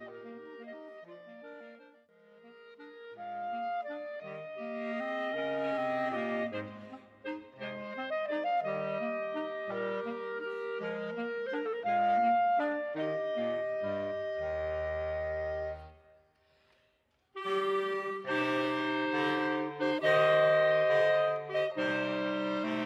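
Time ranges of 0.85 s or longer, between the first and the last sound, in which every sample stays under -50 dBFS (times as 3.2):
15.98–17.35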